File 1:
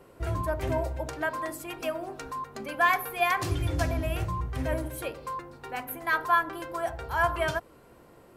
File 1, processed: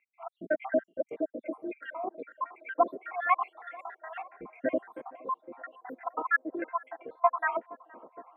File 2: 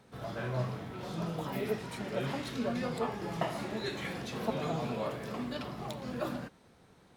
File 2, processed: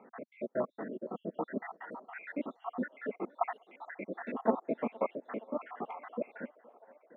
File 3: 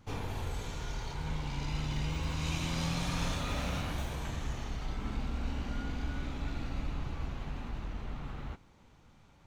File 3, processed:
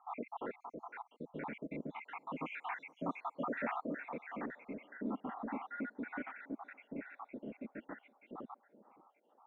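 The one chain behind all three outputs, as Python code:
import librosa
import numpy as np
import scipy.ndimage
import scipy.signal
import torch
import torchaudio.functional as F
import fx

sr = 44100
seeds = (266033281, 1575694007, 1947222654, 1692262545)

y = fx.spec_dropout(x, sr, seeds[0], share_pct=78)
y = scipy.signal.sosfilt(scipy.signal.ellip(3, 1.0, 40, [230.0, 2000.0], 'bandpass', fs=sr, output='sos'), y)
y = fx.echo_banded(y, sr, ms=468, feedback_pct=81, hz=660.0, wet_db=-22.0)
y = F.gain(torch.from_numpy(y), 6.5).numpy()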